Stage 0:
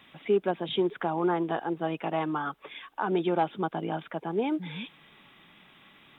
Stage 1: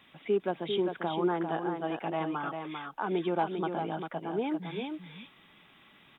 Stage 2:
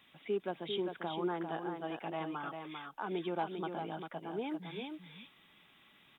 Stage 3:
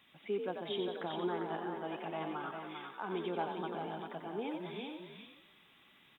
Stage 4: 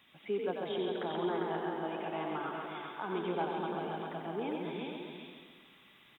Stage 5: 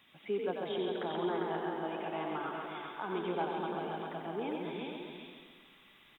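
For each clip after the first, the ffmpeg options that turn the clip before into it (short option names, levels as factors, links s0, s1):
-af "aecho=1:1:397:0.501,volume=0.668"
-af "highshelf=f=3500:g=8,volume=0.447"
-filter_complex "[0:a]asplit=7[s0][s1][s2][s3][s4][s5][s6];[s1]adelay=90,afreqshift=48,volume=0.473[s7];[s2]adelay=180,afreqshift=96,volume=0.237[s8];[s3]adelay=270,afreqshift=144,volume=0.119[s9];[s4]adelay=360,afreqshift=192,volume=0.0589[s10];[s5]adelay=450,afreqshift=240,volume=0.0295[s11];[s6]adelay=540,afreqshift=288,volume=0.0148[s12];[s0][s7][s8][s9][s10][s11][s12]amix=inputs=7:normalize=0,volume=0.841"
-filter_complex "[0:a]acrossover=split=3200[s0][s1];[s1]acompressor=threshold=0.00112:ratio=4:attack=1:release=60[s2];[s0][s2]amix=inputs=2:normalize=0,aecho=1:1:135|270|405|540|675|810|945:0.531|0.287|0.155|0.0836|0.0451|0.0244|0.0132,volume=1.19"
-af "asubboost=boost=3.5:cutoff=51"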